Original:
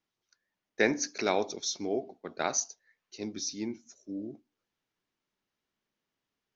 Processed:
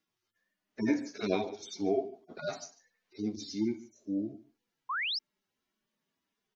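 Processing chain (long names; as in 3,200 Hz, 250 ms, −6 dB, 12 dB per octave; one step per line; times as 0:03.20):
harmonic-percussive split with one part muted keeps harmonic
on a send: single-tap delay 145 ms −19.5 dB
on the sum: sound drawn into the spectrogram rise, 0:04.89–0:05.19, 970–5,600 Hz −38 dBFS
level +5 dB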